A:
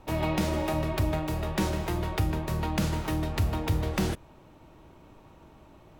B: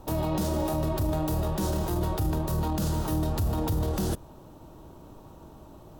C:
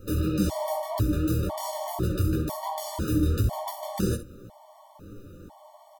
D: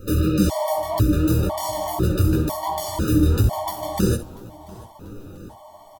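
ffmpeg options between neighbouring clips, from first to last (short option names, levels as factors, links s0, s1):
-af "highshelf=f=11000:g=9,alimiter=level_in=1.12:limit=0.0631:level=0:latency=1:release=16,volume=0.891,equalizer=f=2200:w=1.6:g=-14,volume=1.88"
-af "flanger=delay=17:depth=7:speed=2.9,aecho=1:1:10|64:0.531|0.266,afftfilt=real='re*gt(sin(2*PI*1*pts/sr)*(1-2*mod(floor(b*sr/1024/590),2)),0)':imag='im*gt(sin(2*PI*1*pts/sr)*(1-2*mod(floor(b*sr/1024/590),2)),0)':win_size=1024:overlap=0.75,volume=1.88"
-af "aecho=1:1:689|1378|2067:0.0708|0.0319|0.0143,volume=2.11"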